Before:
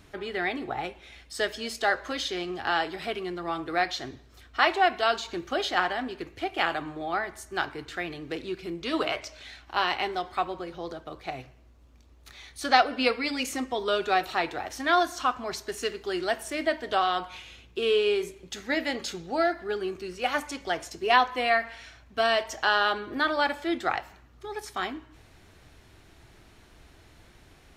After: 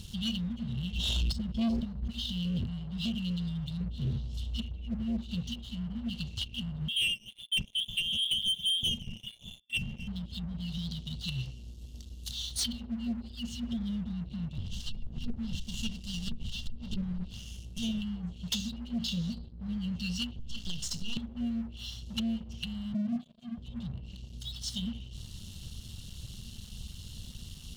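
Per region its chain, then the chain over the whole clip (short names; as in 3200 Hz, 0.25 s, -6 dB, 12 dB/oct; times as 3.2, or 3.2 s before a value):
0.82–2.74 gate -39 dBFS, range -19 dB + backwards sustainer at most 35 dB/s
3.8–5.21 tone controls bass +6 dB, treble -9 dB + doubler 14 ms -12 dB
6.88–10.08 expander -40 dBFS + inverted band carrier 3500 Hz
14.58–18.02 fixed phaser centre 790 Hz, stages 4 + running maximum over 9 samples
20.39–21.17 half-wave gain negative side -12 dB + compressor 8:1, threshold -32 dBFS
22.94–23.58 zero-crossing step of -38 dBFS + resonant high-pass 280 Hz, resonance Q 2.9 + air absorption 170 m
whole clip: treble ducked by the level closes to 450 Hz, closed at -24 dBFS; FFT band-reject 240–2700 Hz; sample leveller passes 3; gain +1.5 dB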